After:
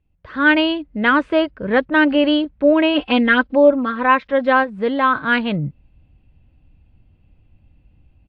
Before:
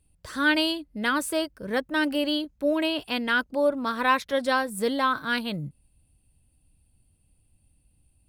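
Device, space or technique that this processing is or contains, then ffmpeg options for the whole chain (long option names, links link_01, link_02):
action camera in a waterproof case: -filter_complex "[0:a]asplit=3[link_01][link_02][link_03];[link_01]afade=type=out:start_time=2.94:duration=0.02[link_04];[link_02]aecho=1:1:3.8:0.96,afade=type=in:start_time=2.94:duration=0.02,afade=type=out:start_time=4.63:duration=0.02[link_05];[link_03]afade=type=in:start_time=4.63:duration=0.02[link_06];[link_04][link_05][link_06]amix=inputs=3:normalize=0,lowpass=frequency=2800:width=0.5412,lowpass=frequency=2800:width=1.3066,dynaudnorm=framelen=230:gausssize=3:maxgain=13dB,volume=-1dB" -ar 24000 -c:a aac -b:a 64k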